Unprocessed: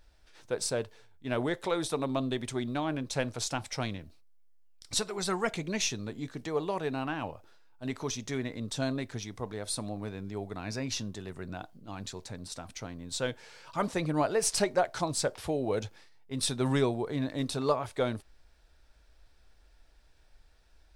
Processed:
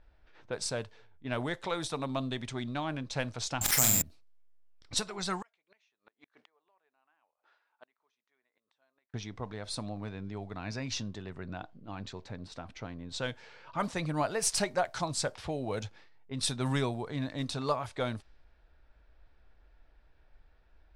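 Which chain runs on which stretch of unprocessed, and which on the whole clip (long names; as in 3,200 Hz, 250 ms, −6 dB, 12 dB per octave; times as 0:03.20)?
0:03.61–0:04.02: flutter between parallel walls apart 7.7 metres, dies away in 0.51 s + bad sample-rate conversion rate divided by 6×, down none, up zero stuff + envelope flattener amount 70%
0:05.42–0:09.14: high-pass filter 860 Hz + gate with flip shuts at −36 dBFS, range −34 dB
whole clip: low-pass that shuts in the quiet parts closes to 2,200 Hz, open at −25 dBFS; dynamic equaliser 390 Hz, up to −7 dB, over −43 dBFS, Q 1.2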